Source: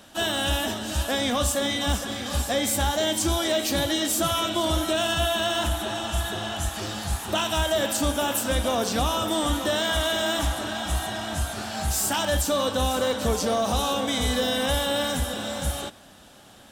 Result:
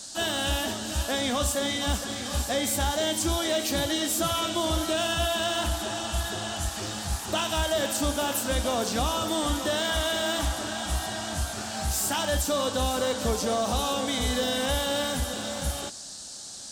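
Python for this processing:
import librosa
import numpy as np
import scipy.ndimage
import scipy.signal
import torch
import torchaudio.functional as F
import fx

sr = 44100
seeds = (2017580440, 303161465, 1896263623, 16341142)

y = fx.dmg_noise_band(x, sr, seeds[0], low_hz=3900.0, high_hz=8800.0, level_db=-39.0)
y = F.gain(torch.from_numpy(y), -2.5).numpy()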